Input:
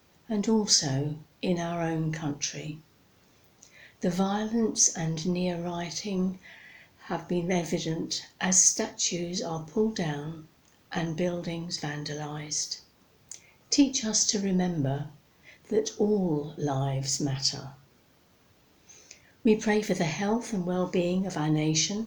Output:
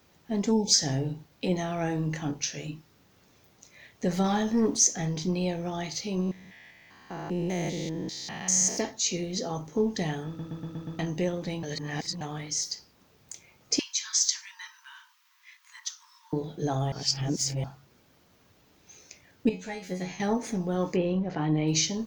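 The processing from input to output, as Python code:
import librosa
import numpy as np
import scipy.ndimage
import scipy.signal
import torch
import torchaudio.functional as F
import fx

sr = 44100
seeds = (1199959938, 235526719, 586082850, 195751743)

y = fx.spec_erase(x, sr, start_s=0.52, length_s=0.22, low_hz=910.0, high_hz=2200.0)
y = fx.leveller(y, sr, passes=1, at=(4.24, 4.77))
y = fx.spec_steps(y, sr, hold_ms=200, at=(6.2, 8.76), fade=0.02)
y = fx.brickwall_highpass(y, sr, low_hz=900.0, at=(13.79, 16.33))
y = fx.comb_fb(y, sr, f0_hz=91.0, decay_s=0.25, harmonics='all', damping=0.0, mix_pct=100, at=(19.49, 20.2))
y = fx.gaussian_blur(y, sr, sigma=2.3, at=(20.95, 21.67), fade=0.02)
y = fx.edit(y, sr, fx.stutter_over(start_s=10.27, slice_s=0.12, count=6),
    fx.reverse_span(start_s=11.63, length_s=0.58),
    fx.reverse_span(start_s=16.92, length_s=0.72), tone=tone)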